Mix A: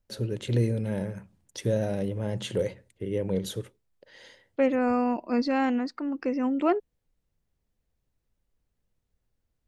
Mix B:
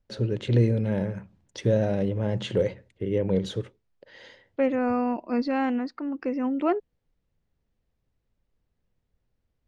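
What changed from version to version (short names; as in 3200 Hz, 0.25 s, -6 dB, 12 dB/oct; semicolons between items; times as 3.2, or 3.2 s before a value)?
first voice +4.0 dB; master: add air absorption 120 m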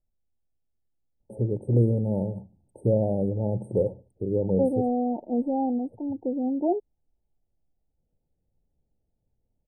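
first voice: entry +1.20 s; master: add brick-wall FIR band-stop 920–8200 Hz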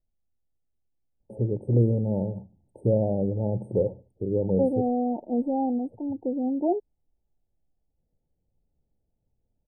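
first voice: add LPF 3400 Hz 6 dB/oct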